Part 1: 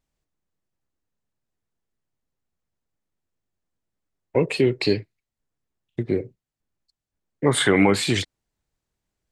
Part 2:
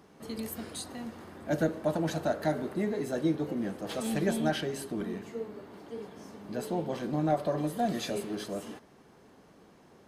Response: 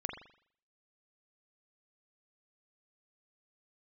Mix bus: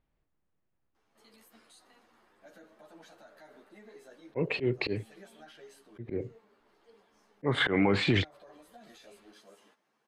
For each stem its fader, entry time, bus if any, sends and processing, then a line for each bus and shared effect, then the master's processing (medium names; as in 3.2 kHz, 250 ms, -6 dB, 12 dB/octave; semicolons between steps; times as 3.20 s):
+2.5 dB, 0.00 s, no send, low-pass 2.9 kHz 12 dB/octave
-7.5 dB, 0.95 s, no send, high-pass 1.3 kHz 6 dB/octave; peak limiter -33.5 dBFS, peak gain reduction 10.5 dB; three-phase chorus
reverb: none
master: treble shelf 4.8 kHz -7.5 dB; slow attack 250 ms; peak limiter -15.5 dBFS, peak gain reduction 10 dB